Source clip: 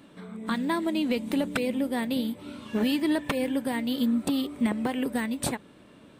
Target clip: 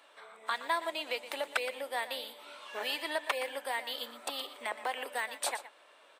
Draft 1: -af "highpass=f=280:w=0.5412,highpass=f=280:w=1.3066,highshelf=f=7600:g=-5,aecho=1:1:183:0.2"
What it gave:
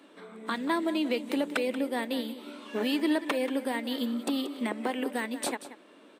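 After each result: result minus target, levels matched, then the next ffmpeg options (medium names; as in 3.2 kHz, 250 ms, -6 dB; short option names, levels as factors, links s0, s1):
250 Hz band +18.5 dB; echo 64 ms late
-af "highpass=f=610:w=0.5412,highpass=f=610:w=1.3066,highshelf=f=7600:g=-5,aecho=1:1:183:0.2"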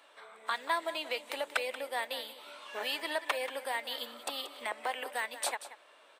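echo 64 ms late
-af "highpass=f=610:w=0.5412,highpass=f=610:w=1.3066,highshelf=f=7600:g=-5,aecho=1:1:119:0.2"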